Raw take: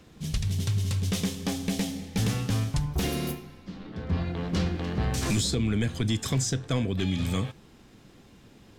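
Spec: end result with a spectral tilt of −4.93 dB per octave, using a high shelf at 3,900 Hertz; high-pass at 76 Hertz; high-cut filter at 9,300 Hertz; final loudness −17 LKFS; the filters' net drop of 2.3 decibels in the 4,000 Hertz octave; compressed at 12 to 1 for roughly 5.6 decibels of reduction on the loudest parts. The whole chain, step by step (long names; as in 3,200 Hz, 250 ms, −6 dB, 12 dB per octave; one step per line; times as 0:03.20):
high-pass filter 76 Hz
low-pass filter 9,300 Hz
high-shelf EQ 3,900 Hz +8 dB
parametric band 4,000 Hz −8 dB
downward compressor 12 to 1, threshold −28 dBFS
level +16.5 dB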